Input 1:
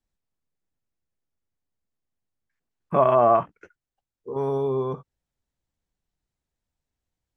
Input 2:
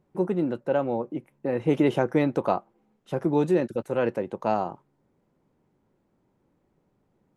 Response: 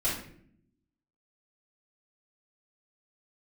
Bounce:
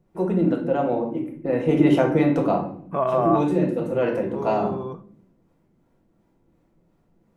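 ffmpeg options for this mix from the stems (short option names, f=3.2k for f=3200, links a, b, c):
-filter_complex "[0:a]volume=-5dB,asplit=3[a][b][c];[b]volume=-23dB[d];[1:a]acrossover=split=430[e][f];[e]aeval=exprs='val(0)*(1-0.5/2+0.5/2*cos(2*PI*2.8*n/s))':c=same[g];[f]aeval=exprs='val(0)*(1-0.5/2-0.5/2*cos(2*PI*2.8*n/s))':c=same[h];[g][h]amix=inputs=2:normalize=0,volume=0.5dB,asplit=2[i][j];[j]volume=-5.5dB[k];[c]apad=whole_len=324715[l];[i][l]sidechaincompress=threshold=-33dB:ratio=8:attack=16:release=827[m];[2:a]atrim=start_sample=2205[n];[d][k]amix=inputs=2:normalize=0[o];[o][n]afir=irnorm=-1:irlink=0[p];[a][m][p]amix=inputs=3:normalize=0"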